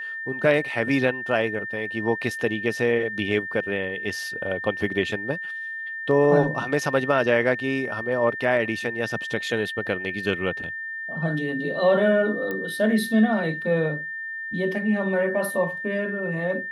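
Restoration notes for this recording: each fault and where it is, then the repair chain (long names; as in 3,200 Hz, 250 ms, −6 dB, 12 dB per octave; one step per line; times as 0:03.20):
whistle 1,800 Hz −30 dBFS
0:12.51: click −17 dBFS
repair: click removal
notch filter 1,800 Hz, Q 30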